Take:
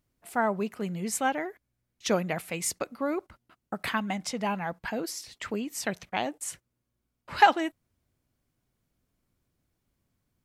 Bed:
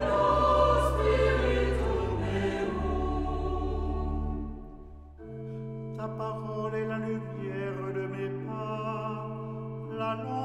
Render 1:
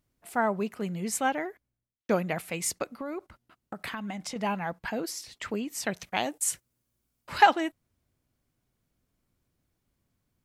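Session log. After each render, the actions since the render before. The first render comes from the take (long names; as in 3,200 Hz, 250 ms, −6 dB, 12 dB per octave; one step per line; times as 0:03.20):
0:01.45–0:02.09: fade out and dull
0:02.88–0:04.36: downward compressor, threshold −32 dBFS
0:05.99–0:07.38: high-shelf EQ 4,500 Hz +10 dB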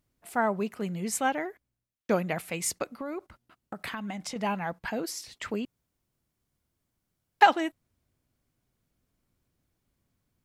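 0:05.65–0:07.41: fill with room tone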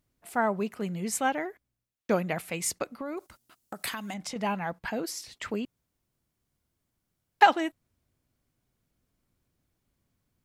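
0:03.17–0:04.14: bass and treble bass −4 dB, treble +14 dB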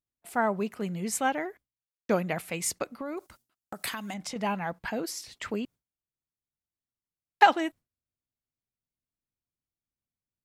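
noise gate with hold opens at −44 dBFS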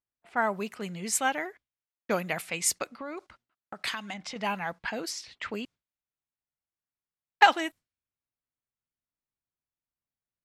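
low-pass that shuts in the quiet parts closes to 1,600 Hz, open at −26.5 dBFS
tilt shelving filter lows −5 dB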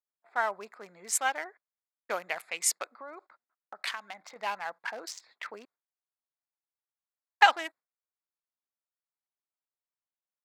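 adaptive Wiener filter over 15 samples
high-pass filter 670 Hz 12 dB per octave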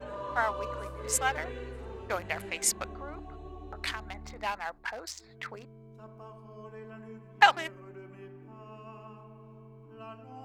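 mix in bed −14 dB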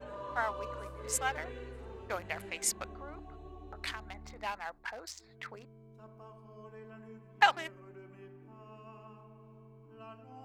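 level −4.5 dB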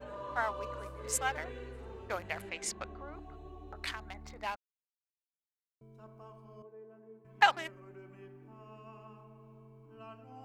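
0:02.49–0:03.15: high-frequency loss of the air 66 metres
0:04.56–0:05.81: silence
0:06.62–0:07.25: resonant band-pass 440 Hz, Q 1.5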